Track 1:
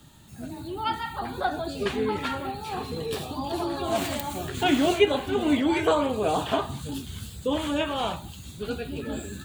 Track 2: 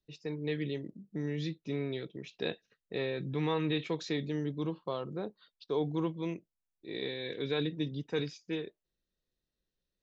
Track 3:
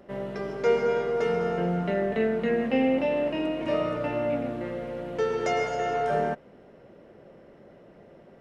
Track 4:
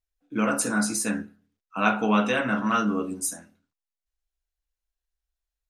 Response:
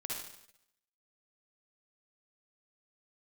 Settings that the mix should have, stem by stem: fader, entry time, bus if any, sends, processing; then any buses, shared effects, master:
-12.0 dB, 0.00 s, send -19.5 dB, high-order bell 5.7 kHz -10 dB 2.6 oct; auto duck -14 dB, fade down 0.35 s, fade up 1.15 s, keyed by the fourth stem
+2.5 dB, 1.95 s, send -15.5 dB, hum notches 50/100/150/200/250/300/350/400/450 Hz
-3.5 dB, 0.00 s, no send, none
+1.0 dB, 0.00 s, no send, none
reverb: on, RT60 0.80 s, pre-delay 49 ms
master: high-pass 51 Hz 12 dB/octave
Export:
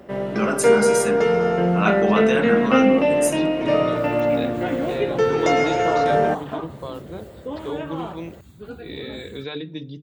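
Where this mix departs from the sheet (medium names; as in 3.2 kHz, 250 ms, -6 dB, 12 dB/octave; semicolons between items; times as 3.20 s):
stem 1 -12.0 dB -> -5.0 dB; stem 3 -3.5 dB -> +7.5 dB; reverb return -10.0 dB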